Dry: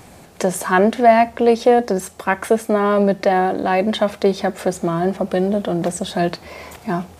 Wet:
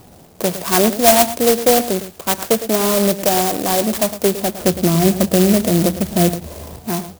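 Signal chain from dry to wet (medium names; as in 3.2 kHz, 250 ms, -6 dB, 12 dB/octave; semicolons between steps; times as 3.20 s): level-controlled noise filter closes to 1.4 kHz, open at -13.5 dBFS; 4.61–6.81 s: tilt EQ -3 dB/octave; delay 109 ms -12.5 dB; sampling jitter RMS 0.15 ms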